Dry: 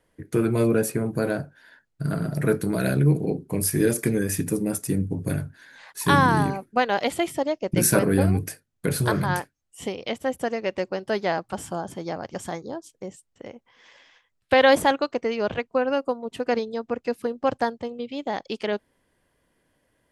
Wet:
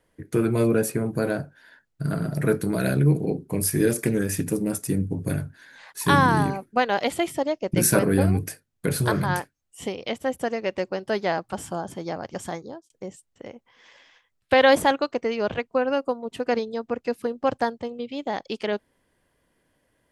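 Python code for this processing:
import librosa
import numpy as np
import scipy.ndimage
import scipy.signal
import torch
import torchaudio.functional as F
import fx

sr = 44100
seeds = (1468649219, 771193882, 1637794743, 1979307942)

y = fx.doppler_dist(x, sr, depth_ms=0.13, at=(3.9, 4.81))
y = fx.edit(y, sr, fx.fade_out_span(start_s=12.46, length_s=0.44, curve='qsin'), tone=tone)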